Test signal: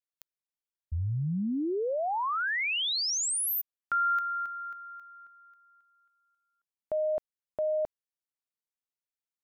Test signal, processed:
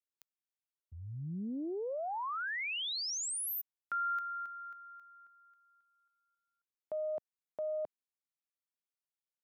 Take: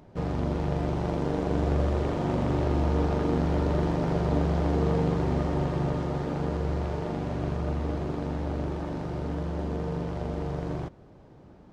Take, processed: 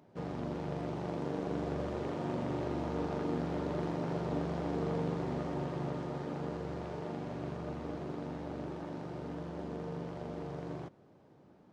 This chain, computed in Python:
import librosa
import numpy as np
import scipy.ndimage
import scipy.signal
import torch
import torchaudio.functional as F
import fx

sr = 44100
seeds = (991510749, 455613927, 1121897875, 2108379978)

y = scipy.signal.sosfilt(scipy.signal.butter(2, 140.0, 'highpass', fs=sr, output='sos'), x)
y = fx.doppler_dist(y, sr, depth_ms=0.17)
y = y * 10.0 ** (-7.5 / 20.0)